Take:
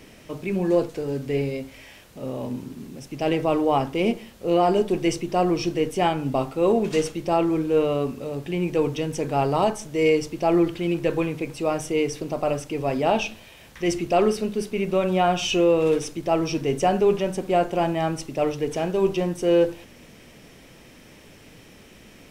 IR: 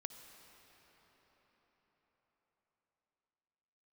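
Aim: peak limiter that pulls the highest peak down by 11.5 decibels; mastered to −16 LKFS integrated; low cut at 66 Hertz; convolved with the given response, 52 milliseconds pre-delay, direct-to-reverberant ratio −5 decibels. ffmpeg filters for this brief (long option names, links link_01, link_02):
-filter_complex "[0:a]highpass=66,alimiter=limit=-19.5dB:level=0:latency=1,asplit=2[link_01][link_02];[1:a]atrim=start_sample=2205,adelay=52[link_03];[link_02][link_03]afir=irnorm=-1:irlink=0,volume=8dB[link_04];[link_01][link_04]amix=inputs=2:normalize=0,volume=7dB"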